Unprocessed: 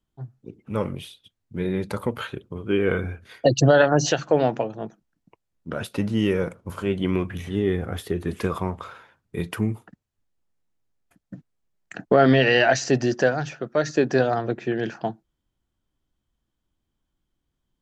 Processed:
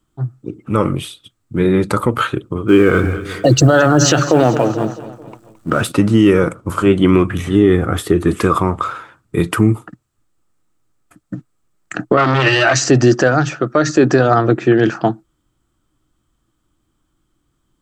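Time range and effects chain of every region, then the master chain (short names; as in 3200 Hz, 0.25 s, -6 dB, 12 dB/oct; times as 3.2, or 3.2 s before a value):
2.68–5.92 G.711 law mismatch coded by mu + feedback echo 0.218 s, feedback 49%, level -16 dB
12.17–12.76 high shelf 4000 Hz +10.5 dB + notch comb 240 Hz + core saturation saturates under 1400 Hz
whole clip: thirty-one-band EQ 125 Hz +6 dB, 315 Hz +9 dB, 1250 Hz +11 dB, 8000 Hz +9 dB; maximiser +11 dB; gain -1 dB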